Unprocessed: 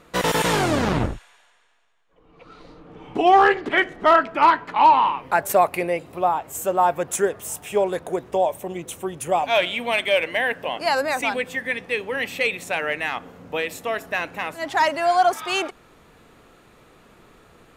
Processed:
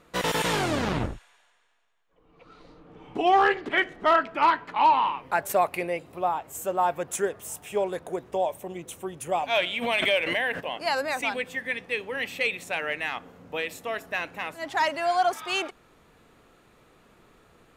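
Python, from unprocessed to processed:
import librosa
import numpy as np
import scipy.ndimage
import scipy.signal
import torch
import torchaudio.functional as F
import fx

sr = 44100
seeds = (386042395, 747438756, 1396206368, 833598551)

y = fx.dynamic_eq(x, sr, hz=3100.0, q=0.8, threshold_db=-31.0, ratio=4.0, max_db=3)
y = fx.pre_swell(y, sr, db_per_s=32.0, at=(9.81, 10.59), fade=0.02)
y = y * 10.0 ** (-6.0 / 20.0)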